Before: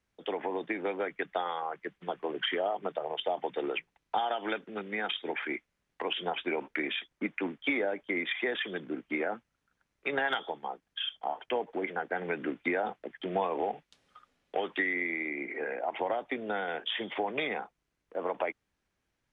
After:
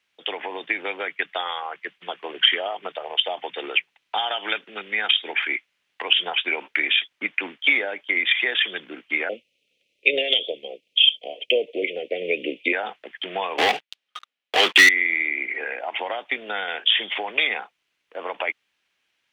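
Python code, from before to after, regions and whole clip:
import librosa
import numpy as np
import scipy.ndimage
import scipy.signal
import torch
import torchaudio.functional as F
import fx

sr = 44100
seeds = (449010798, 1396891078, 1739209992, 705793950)

y = fx.chain(x, sr, fx.ellip_bandstop(low_hz=530.0, high_hz=2500.0, order=3, stop_db=40),
    fx.peak_eq(hz=780.0, db=15.0, octaves=2.6), at=(9.29, 12.73))
y = fx.chain(y, sr, fx.highpass(hz=130.0, slope=24),
    fx.leveller(passes=5),
    fx.upward_expand(threshold_db=-39.0, expansion=1.5), at=(13.58, 14.89))
y = fx.highpass(y, sr, hz=620.0, slope=6)
y = fx.peak_eq(y, sr, hz=2900.0, db=13.0, octaves=1.3)
y = y * librosa.db_to_amplitude(4.0)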